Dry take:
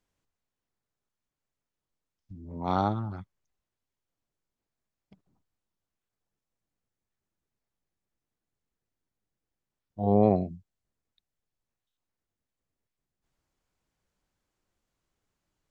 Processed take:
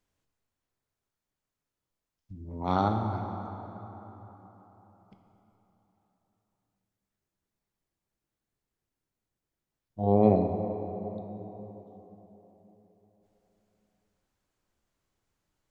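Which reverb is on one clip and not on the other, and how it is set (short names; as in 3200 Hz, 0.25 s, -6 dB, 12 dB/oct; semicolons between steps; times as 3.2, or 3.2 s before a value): plate-style reverb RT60 4.1 s, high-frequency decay 0.55×, DRR 4.5 dB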